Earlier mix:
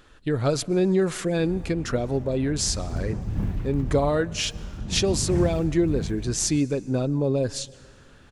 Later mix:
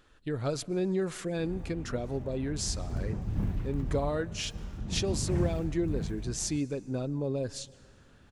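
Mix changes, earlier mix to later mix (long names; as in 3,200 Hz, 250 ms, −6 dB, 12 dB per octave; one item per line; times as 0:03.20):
speech −8.5 dB
background −4.0 dB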